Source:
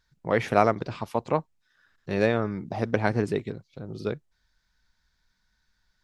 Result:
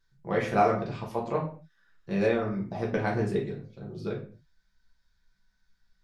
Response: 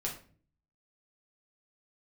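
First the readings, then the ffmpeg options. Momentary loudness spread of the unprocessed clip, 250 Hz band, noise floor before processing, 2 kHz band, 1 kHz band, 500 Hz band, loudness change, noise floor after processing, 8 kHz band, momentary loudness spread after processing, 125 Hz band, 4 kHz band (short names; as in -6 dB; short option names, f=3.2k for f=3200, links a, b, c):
17 LU, -1.5 dB, -73 dBFS, -3.5 dB, -1.5 dB, -2.5 dB, -2.5 dB, -72 dBFS, n/a, 14 LU, -2.0 dB, -4.5 dB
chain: -filter_complex "[1:a]atrim=start_sample=2205,afade=t=out:st=0.32:d=0.01,atrim=end_sample=14553[a];[0:a][a]afir=irnorm=-1:irlink=0,volume=-5.5dB"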